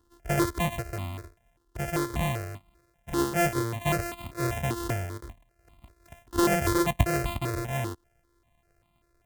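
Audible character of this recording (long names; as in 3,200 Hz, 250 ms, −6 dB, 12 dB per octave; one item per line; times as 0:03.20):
a buzz of ramps at a fixed pitch in blocks of 128 samples
notches that jump at a steady rate 5.1 Hz 630–1,600 Hz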